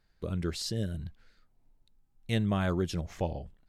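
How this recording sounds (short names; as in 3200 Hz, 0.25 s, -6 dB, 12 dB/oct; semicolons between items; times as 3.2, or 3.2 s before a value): noise floor -70 dBFS; spectral tilt -6.0 dB/oct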